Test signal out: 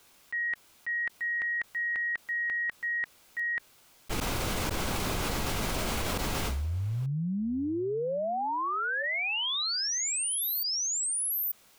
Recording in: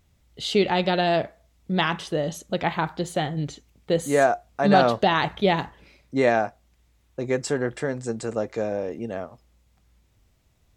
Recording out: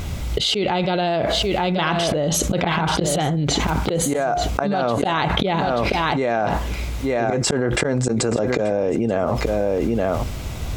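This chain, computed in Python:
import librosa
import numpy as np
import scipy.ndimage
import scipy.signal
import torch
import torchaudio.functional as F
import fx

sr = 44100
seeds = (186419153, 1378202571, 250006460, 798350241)

p1 = fx.high_shelf(x, sr, hz=4700.0, db=-5.0)
p2 = fx.notch(p1, sr, hz=1800.0, q=11.0)
p3 = fx.auto_swell(p2, sr, attack_ms=236.0)
p4 = p3 + fx.echo_single(p3, sr, ms=883, db=-15.5, dry=0)
p5 = fx.env_flatten(p4, sr, amount_pct=100)
y = p5 * 10.0 ** (-4.0 / 20.0)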